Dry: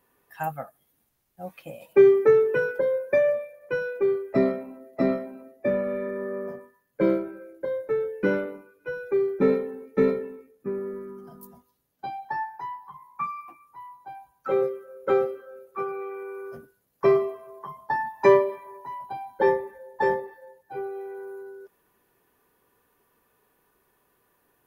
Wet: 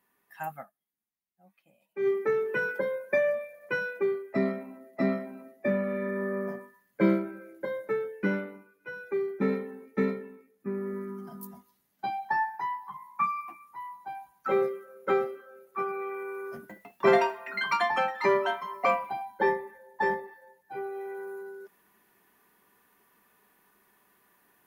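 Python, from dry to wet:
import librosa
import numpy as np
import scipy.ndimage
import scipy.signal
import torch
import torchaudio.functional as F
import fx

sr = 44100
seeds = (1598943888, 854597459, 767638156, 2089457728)

y = fx.echo_pitch(x, sr, ms=154, semitones=5, count=3, db_per_echo=-3.0, at=(16.54, 19.91))
y = fx.edit(y, sr, fx.fade_down_up(start_s=0.61, length_s=1.47, db=-16.5, fade_s=0.15, curve='qua'), tone=tone)
y = fx.graphic_eq_31(y, sr, hz=(200, 500, 2000), db=(11, -8, 5))
y = fx.rider(y, sr, range_db=4, speed_s=0.5)
y = fx.low_shelf(y, sr, hz=210.0, db=-11.5)
y = F.gain(torch.from_numpy(y), -1.0).numpy()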